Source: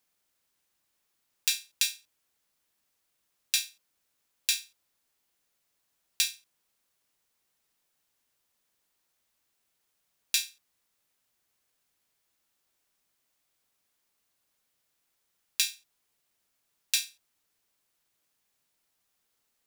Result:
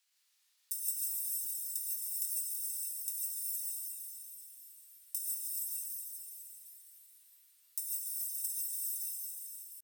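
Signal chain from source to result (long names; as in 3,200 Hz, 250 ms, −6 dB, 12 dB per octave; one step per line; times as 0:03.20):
high-pass filter 950 Hz 12 dB per octave
spectral tilt −3.5 dB per octave
on a send: feedback delay with all-pass diffusion 481 ms, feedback 63%, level −7 dB
on the sum: wrong playback speed 7.5 ips tape played at 15 ips
in parallel at +2.5 dB: compressor whose output falls as the input rises −49 dBFS, ratio −0.5
on the sum: pitch shifter +9 semitones
reverb whose tail is shaped and stops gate 180 ms rising, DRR −2 dB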